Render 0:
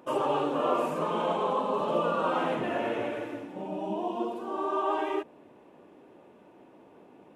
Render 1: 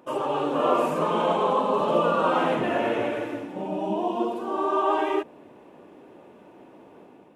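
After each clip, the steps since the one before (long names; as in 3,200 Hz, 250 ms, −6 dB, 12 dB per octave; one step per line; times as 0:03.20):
automatic gain control gain up to 5.5 dB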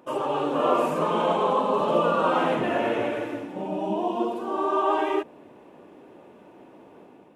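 no processing that can be heard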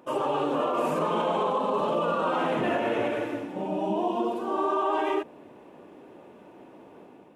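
brickwall limiter −17.5 dBFS, peak gain reduction 10 dB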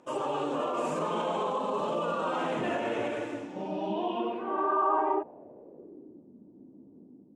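low-pass filter sweep 7,600 Hz → 250 Hz, 0:03.40–0:06.26
level −4.5 dB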